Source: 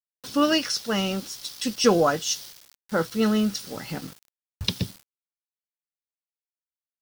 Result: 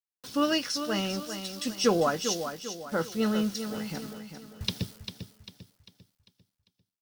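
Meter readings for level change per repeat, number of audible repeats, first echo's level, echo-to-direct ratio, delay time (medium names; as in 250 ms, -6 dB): -7.5 dB, 4, -9.0 dB, -8.0 dB, 397 ms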